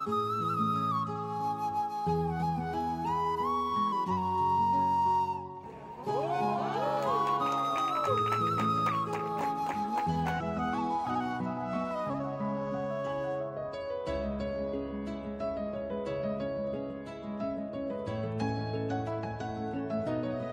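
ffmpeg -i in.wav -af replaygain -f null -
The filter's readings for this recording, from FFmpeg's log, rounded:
track_gain = +13.8 dB
track_peak = 0.102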